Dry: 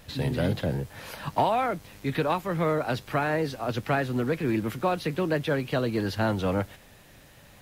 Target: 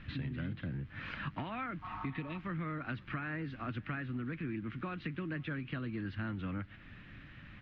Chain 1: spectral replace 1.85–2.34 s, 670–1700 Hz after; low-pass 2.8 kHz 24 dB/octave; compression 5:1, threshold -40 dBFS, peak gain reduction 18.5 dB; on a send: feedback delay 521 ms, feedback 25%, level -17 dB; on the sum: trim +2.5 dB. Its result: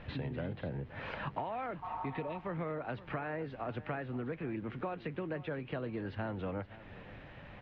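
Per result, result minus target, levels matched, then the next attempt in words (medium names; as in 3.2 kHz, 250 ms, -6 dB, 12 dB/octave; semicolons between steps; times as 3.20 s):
500 Hz band +8.5 dB; echo-to-direct +8 dB
spectral replace 1.85–2.34 s, 670–1700 Hz after; low-pass 2.8 kHz 24 dB/octave; high-order bell 620 Hz -14.5 dB 1.5 oct; compression 5:1, threshold -40 dBFS, peak gain reduction 15.5 dB; on a send: feedback delay 521 ms, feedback 25%, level -17 dB; on the sum: trim +2.5 dB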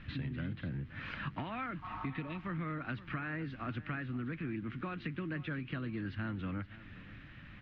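echo-to-direct +8 dB
spectral replace 1.85–2.34 s, 670–1700 Hz after; low-pass 2.8 kHz 24 dB/octave; high-order bell 620 Hz -14.5 dB 1.5 oct; compression 5:1, threshold -40 dBFS, peak gain reduction 15.5 dB; on a send: feedback delay 521 ms, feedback 25%, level -25 dB; on the sum: trim +2.5 dB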